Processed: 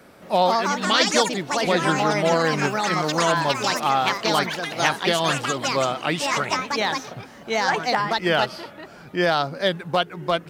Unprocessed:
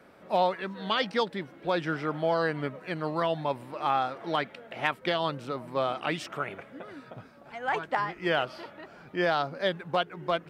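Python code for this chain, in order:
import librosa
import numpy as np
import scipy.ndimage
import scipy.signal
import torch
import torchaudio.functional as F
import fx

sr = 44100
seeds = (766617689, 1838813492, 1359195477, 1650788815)

y = fx.echo_pitch(x, sr, ms=222, semitones=4, count=3, db_per_echo=-3.0)
y = fx.bass_treble(y, sr, bass_db=3, treble_db=9)
y = y * 10.0 ** (5.5 / 20.0)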